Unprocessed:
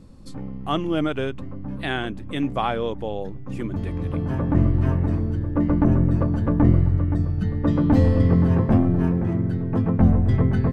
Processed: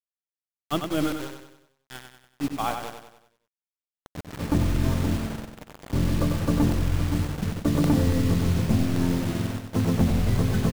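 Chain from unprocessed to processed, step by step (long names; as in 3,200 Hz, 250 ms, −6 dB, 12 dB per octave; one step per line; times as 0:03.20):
mains-hum notches 60/120 Hz
noise gate −21 dBFS, range −25 dB
0:08.46–0:08.86: low-shelf EQ 280 Hz +10 dB
downward compressor 12 to 1, threshold −18 dBFS, peak gain reduction 14 dB
0:05.46–0:05.93: tuned comb filter 53 Hz, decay 1.1 s, harmonics odd, mix 100%
bit reduction 6 bits
repeating echo 95 ms, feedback 47%, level −6.5 dB
regular buffer underruns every 0.28 s, samples 64, repeat, from 0:00.84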